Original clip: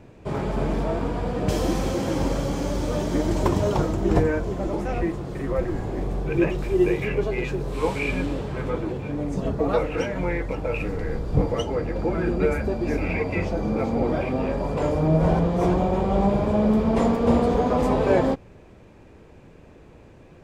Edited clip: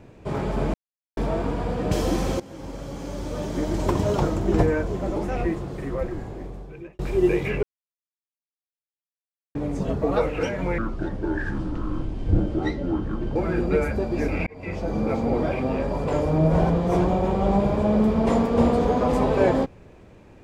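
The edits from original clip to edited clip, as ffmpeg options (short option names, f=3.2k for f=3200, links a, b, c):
-filter_complex "[0:a]asplit=9[a][b][c][d][e][f][g][h][i];[a]atrim=end=0.74,asetpts=PTS-STARTPTS,afade=t=out:st=0.736:d=0.004:c=hsin,apad=pad_dur=0.43[j];[b]atrim=start=0.74:end=1.97,asetpts=PTS-STARTPTS,afade=t=in:d=0.004:c=hsin,afade=t=out:st=1.226:d=0.004:c=hsin:silence=0.112202[k];[c]atrim=start=1.97:end=6.56,asetpts=PTS-STARTPTS,afade=t=in:d=1.78:silence=0.112202,afade=t=out:st=3.21:d=1.38[l];[d]atrim=start=6.56:end=7.2,asetpts=PTS-STARTPTS,afade=t=in:d=0.004:c=hsin,afade=t=out:st=0.636:d=0.004:c=hsin[m];[e]atrim=start=7.2:end=9.12,asetpts=PTS-STARTPTS,volume=0[n];[f]atrim=start=9.12:end=10.354,asetpts=PTS-STARTPTS,afade=t=in:d=0.004:c=hsin[o];[g]atrim=start=10.35:end=12.05,asetpts=PTS-STARTPTS,asetrate=29106,aresample=44100[p];[h]atrim=start=12.046:end=13.16,asetpts=PTS-STARTPTS,afade=t=out:st=1.11:d=0.004:c=hsin[q];[i]atrim=start=13.16,asetpts=PTS-STARTPTS,afade=t=in:d=0.47[r];[j][k][l][m][n][o]concat=n=6:v=0:a=1[s];[s][p]acrossfade=d=0.004:c1=hsin:c2=hsin[t];[q][r]concat=n=2:v=0:a=1[u];[t][u]acrossfade=d=0.004:c1=hsin:c2=hsin"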